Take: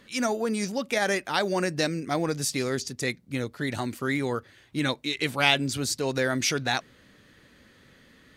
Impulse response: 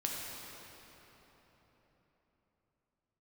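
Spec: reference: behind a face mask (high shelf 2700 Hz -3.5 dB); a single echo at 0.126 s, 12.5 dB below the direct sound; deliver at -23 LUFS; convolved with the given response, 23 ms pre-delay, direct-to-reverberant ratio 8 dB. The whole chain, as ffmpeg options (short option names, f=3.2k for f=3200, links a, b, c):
-filter_complex "[0:a]aecho=1:1:126:0.237,asplit=2[a][b];[1:a]atrim=start_sample=2205,adelay=23[c];[b][c]afir=irnorm=-1:irlink=0,volume=-11.5dB[d];[a][d]amix=inputs=2:normalize=0,highshelf=f=2.7k:g=-3.5,volume=4.5dB"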